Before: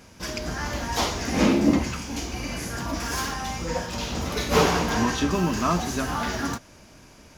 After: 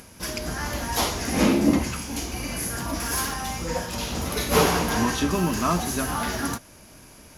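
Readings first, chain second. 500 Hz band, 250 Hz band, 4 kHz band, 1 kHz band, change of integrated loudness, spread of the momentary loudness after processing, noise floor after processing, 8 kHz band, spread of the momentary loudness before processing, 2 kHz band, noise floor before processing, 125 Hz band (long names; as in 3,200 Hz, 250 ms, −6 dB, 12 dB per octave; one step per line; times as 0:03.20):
0.0 dB, 0.0 dB, +0.5 dB, 0.0 dB, +0.5 dB, 10 LU, −49 dBFS, +3.5 dB, 10 LU, 0.0 dB, −50 dBFS, 0.0 dB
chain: parametric band 11,000 Hz +14.5 dB 0.43 octaves
upward compression, threshold −44 dBFS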